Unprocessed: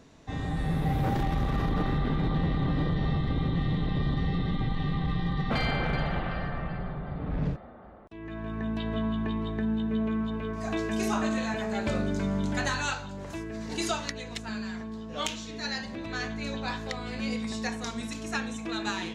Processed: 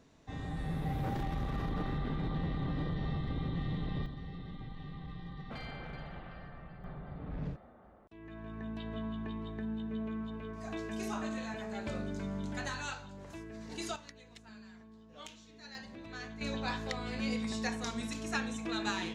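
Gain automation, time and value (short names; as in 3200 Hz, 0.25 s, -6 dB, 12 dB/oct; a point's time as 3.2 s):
-8 dB
from 4.06 s -16 dB
from 6.84 s -9.5 dB
from 13.96 s -17.5 dB
from 15.75 s -11 dB
from 16.41 s -3 dB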